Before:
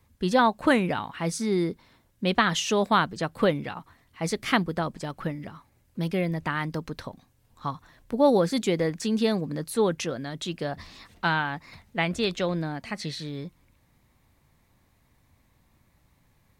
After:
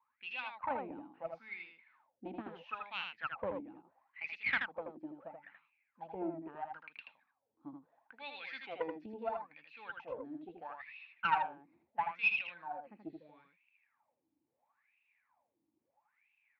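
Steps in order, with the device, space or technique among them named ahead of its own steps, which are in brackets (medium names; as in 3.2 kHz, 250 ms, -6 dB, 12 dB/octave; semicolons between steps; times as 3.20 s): wah-wah guitar rig (wah-wah 0.75 Hz 310–2700 Hz, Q 17; valve stage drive 32 dB, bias 0.65; cabinet simulation 80–4000 Hz, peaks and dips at 270 Hz +4 dB, 390 Hz -9 dB, 840 Hz +8 dB, 1.5 kHz +3 dB, 2.5 kHz +10 dB); 8.19–9.06 s: frequency weighting D; delay 80 ms -5 dB; trim +5 dB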